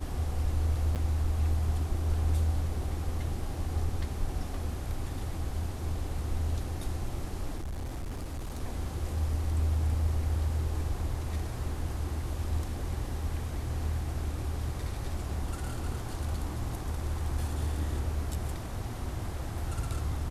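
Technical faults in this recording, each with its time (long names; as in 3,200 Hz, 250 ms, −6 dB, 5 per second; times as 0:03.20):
0:00.95–0:00.96: drop-out 8.6 ms
0:07.56–0:08.62: clipping −32.5 dBFS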